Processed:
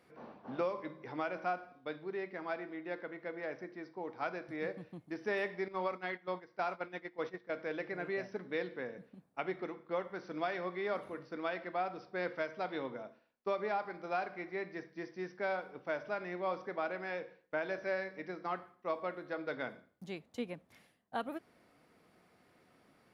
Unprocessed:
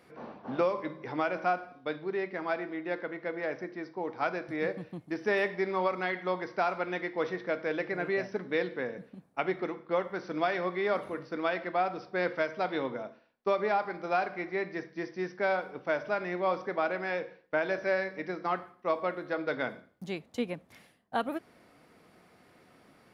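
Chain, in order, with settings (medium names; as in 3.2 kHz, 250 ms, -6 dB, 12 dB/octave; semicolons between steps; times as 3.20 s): 5.68–7.57 s: gate -32 dBFS, range -13 dB; trim -7 dB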